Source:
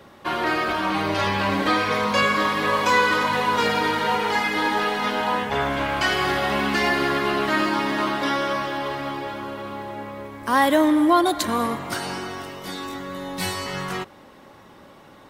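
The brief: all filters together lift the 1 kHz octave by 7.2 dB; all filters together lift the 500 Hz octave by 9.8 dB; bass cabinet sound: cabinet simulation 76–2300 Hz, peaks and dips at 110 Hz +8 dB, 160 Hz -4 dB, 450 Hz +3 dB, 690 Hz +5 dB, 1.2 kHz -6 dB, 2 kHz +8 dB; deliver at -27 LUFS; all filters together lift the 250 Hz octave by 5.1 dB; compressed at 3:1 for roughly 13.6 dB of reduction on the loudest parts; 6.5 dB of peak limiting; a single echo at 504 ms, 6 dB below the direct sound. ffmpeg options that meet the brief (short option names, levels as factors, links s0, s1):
-af "equalizer=f=250:t=o:g=3.5,equalizer=f=500:t=o:g=6,equalizer=f=1000:t=o:g=7,acompressor=threshold=0.0501:ratio=3,alimiter=limit=0.119:level=0:latency=1,highpass=f=76:w=0.5412,highpass=f=76:w=1.3066,equalizer=f=110:t=q:w=4:g=8,equalizer=f=160:t=q:w=4:g=-4,equalizer=f=450:t=q:w=4:g=3,equalizer=f=690:t=q:w=4:g=5,equalizer=f=1200:t=q:w=4:g=-6,equalizer=f=2000:t=q:w=4:g=8,lowpass=f=2300:w=0.5412,lowpass=f=2300:w=1.3066,aecho=1:1:504:0.501,volume=0.944"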